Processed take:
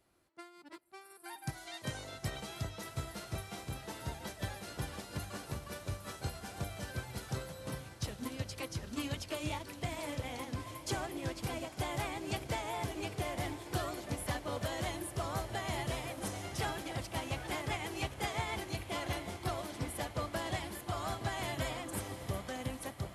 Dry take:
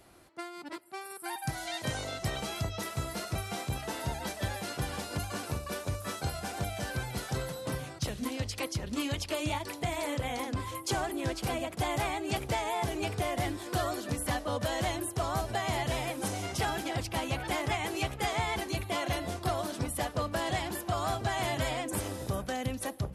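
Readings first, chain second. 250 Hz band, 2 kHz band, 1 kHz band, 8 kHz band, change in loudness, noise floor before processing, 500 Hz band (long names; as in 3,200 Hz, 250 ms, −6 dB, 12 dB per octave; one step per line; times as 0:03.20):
−5.5 dB, −5.5 dB, −7.0 dB, −6.0 dB, −6.0 dB, −45 dBFS, −6.5 dB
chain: parametric band 730 Hz −3 dB 0.31 octaves
feedback delay with all-pass diffusion 813 ms, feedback 76%, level −11.5 dB
expander for the loud parts 1.5 to 1, over −50 dBFS
level −3.5 dB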